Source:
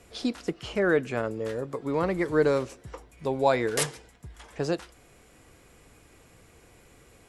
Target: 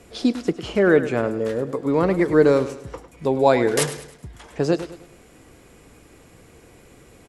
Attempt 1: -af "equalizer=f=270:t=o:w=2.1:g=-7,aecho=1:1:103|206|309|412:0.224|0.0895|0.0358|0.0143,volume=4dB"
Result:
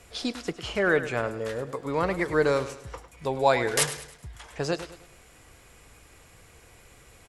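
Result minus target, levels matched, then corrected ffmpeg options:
250 Hz band -4.5 dB
-af "equalizer=f=270:t=o:w=2.1:g=5,aecho=1:1:103|206|309|412:0.224|0.0895|0.0358|0.0143,volume=4dB"

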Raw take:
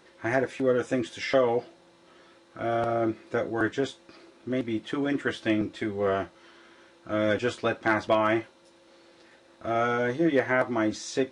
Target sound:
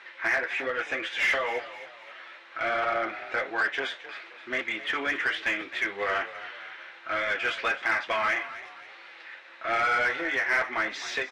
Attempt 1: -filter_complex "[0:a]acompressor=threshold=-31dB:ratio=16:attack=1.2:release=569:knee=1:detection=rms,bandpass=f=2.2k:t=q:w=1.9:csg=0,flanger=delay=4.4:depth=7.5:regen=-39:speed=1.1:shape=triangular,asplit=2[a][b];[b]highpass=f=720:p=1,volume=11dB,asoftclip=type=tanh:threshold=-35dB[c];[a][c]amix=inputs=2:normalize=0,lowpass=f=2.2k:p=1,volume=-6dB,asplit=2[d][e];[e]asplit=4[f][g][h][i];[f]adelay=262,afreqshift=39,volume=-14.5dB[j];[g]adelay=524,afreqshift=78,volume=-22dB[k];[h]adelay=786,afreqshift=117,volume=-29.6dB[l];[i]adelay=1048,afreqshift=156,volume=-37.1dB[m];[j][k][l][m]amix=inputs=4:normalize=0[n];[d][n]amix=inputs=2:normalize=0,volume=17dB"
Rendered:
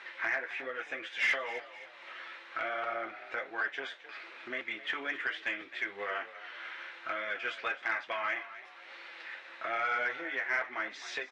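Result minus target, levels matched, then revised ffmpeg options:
compressor: peak gain reduction +10.5 dB
-filter_complex "[0:a]acompressor=threshold=-20dB:ratio=16:attack=1.2:release=569:knee=1:detection=rms,bandpass=f=2.2k:t=q:w=1.9:csg=0,flanger=delay=4.4:depth=7.5:regen=-39:speed=1.1:shape=triangular,asplit=2[a][b];[b]highpass=f=720:p=1,volume=11dB,asoftclip=type=tanh:threshold=-35dB[c];[a][c]amix=inputs=2:normalize=0,lowpass=f=2.2k:p=1,volume=-6dB,asplit=2[d][e];[e]asplit=4[f][g][h][i];[f]adelay=262,afreqshift=39,volume=-14.5dB[j];[g]adelay=524,afreqshift=78,volume=-22dB[k];[h]adelay=786,afreqshift=117,volume=-29.6dB[l];[i]adelay=1048,afreqshift=156,volume=-37.1dB[m];[j][k][l][m]amix=inputs=4:normalize=0[n];[d][n]amix=inputs=2:normalize=0,volume=17dB"

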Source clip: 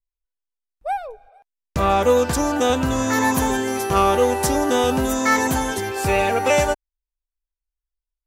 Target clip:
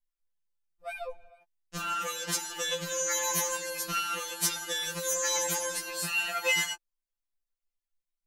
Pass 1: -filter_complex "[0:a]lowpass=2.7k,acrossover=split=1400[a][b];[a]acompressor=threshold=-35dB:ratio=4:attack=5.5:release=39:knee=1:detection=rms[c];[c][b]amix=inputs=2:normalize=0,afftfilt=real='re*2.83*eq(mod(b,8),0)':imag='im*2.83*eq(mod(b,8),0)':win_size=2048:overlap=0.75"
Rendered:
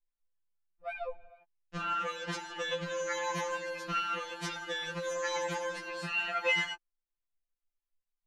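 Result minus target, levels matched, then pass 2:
2000 Hz band +3.0 dB
-filter_complex "[0:a]acrossover=split=1400[a][b];[a]acompressor=threshold=-35dB:ratio=4:attack=5.5:release=39:knee=1:detection=rms[c];[c][b]amix=inputs=2:normalize=0,afftfilt=real='re*2.83*eq(mod(b,8),0)':imag='im*2.83*eq(mod(b,8),0)':win_size=2048:overlap=0.75"

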